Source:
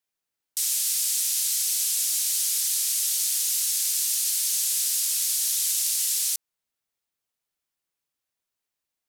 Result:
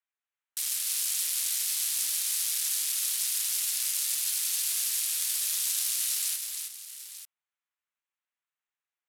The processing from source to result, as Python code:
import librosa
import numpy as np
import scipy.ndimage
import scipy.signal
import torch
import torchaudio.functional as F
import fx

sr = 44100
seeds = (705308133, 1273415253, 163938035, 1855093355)

y = fx.wiener(x, sr, points=9)
y = scipy.signal.sosfilt(scipy.signal.butter(2, 1100.0, 'highpass', fs=sr, output='sos'), y)
y = fx.echo_multitap(y, sr, ms=(317, 892), db=(-5.5, -13.0))